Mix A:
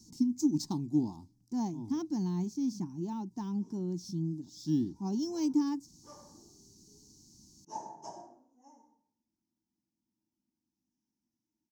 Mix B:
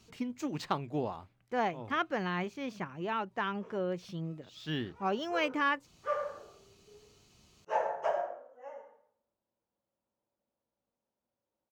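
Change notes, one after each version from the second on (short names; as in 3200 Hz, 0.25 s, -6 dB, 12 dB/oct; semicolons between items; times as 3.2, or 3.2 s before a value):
master: remove EQ curve 100 Hz 0 dB, 310 Hz +10 dB, 520 Hz -27 dB, 910 Hz -6 dB, 1300 Hz -28 dB, 2800 Hz -25 dB, 5400 Hz +11 dB, 9300 Hz +5 dB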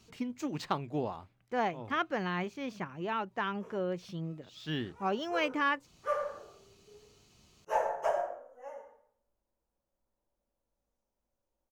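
background: remove Chebyshev band-pass 130–4200 Hz, order 2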